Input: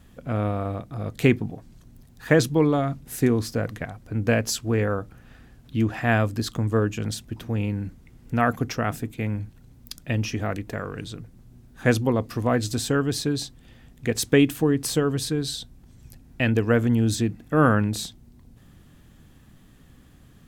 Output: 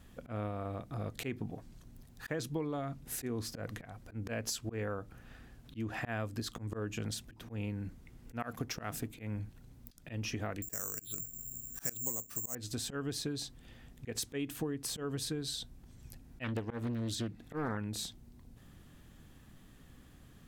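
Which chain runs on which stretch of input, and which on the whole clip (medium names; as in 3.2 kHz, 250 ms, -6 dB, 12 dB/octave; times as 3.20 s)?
8.39–9.08 s: treble shelf 4.8 kHz +7 dB + hysteresis with a dead band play -44 dBFS
10.62–12.55 s: treble shelf 3.2 kHz +6.5 dB + careless resampling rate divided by 6×, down filtered, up zero stuff
16.44–17.77 s: peaking EQ 3.8 kHz +6 dB 0.45 oct + loudspeaker Doppler distortion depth 0.55 ms
whole clip: peaking EQ 130 Hz -2.5 dB 2.5 oct; slow attack 187 ms; compression 5:1, threshold -31 dBFS; trim -3.5 dB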